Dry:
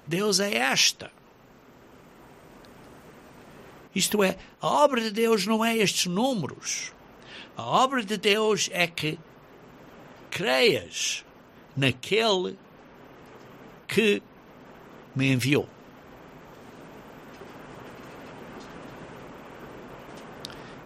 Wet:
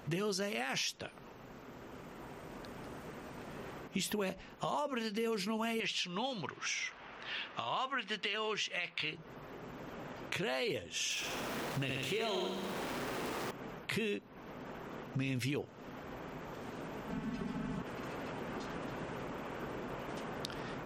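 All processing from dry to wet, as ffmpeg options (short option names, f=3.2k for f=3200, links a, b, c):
-filter_complex "[0:a]asettb=1/sr,asplit=3[a][b][c];[a]atrim=end=5.804[d];[b]atrim=start=5.8:end=9.15,asetpts=PTS-STARTPTS,afade=t=in:d=0.004:c=qsin,afade=t=out:st=3.346:d=0.004:c=qsin,lowpass=3.1k,tiltshelf=f=920:g=-9.5[e];[c]atrim=start=9.146[f];[d][e]acrossfade=d=0.004:c1=hsin:c2=qsin[g];[g][f]acrossfade=d=0.004:c1=qsin:c2=hsin,asettb=1/sr,asplit=3[h][i][j];[h]atrim=end=11.104[k];[i]atrim=start=11.1:end=13.51,asetpts=PTS-STARTPTS,afade=t=in:d=0.004:c=qsin,afade=t=out:st=2.406:d=0.004:c=qsin,aeval=exprs='val(0)+0.5*0.02*sgn(val(0))':c=same,lowshelf=f=110:g=-9,aecho=1:1:67|134|201|268|335|402|469|536:0.531|0.313|0.185|0.109|0.0643|0.038|0.0224|0.0132,atrim=end_sample=106281[l];[j]atrim=start=13.506[m];[k][l]acrossfade=d=0.004:c1=hsin:c2=qsin[n];[n][m]acrossfade=d=0.004:c1=qsin:c2=hsin,asettb=1/sr,asplit=3[o][p][q];[o]atrim=end=17.094[r];[p]atrim=start=17.09:end=17.82,asetpts=PTS-STARTPTS,afade=t=in:d=0.004:c=qsin,afade=t=out:st=0.726:d=0.004:c=qsin,lowshelf=f=300:t=q:w=1.5:g=8,aecho=1:1:4.6:0.97,atrim=end_sample=32193[s];[q]atrim=start=17.816[t];[r][s]acrossfade=d=0.004:c1=hsin:c2=qsin[u];[u][t]acrossfade=d=0.004:c1=qsin:c2=hsin,highshelf=f=4.8k:g=-4,alimiter=limit=-16.5dB:level=0:latency=1:release=19,acompressor=threshold=-39dB:ratio=3,volume=1.5dB"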